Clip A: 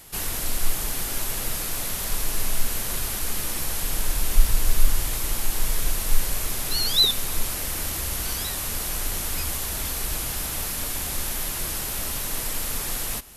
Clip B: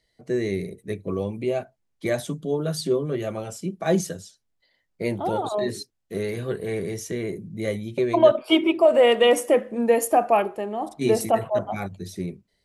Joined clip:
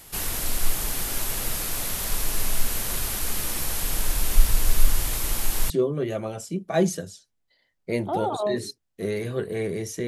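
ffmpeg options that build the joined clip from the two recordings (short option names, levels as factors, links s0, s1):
-filter_complex "[0:a]apad=whole_dur=10.07,atrim=end=10.07,atrim=end=5.702[s0];[1:a]atrim=start=2.818:end=7.19[s1];[s0][s1]acrossfade=d=0.004:c1=hsin:c2=hsin"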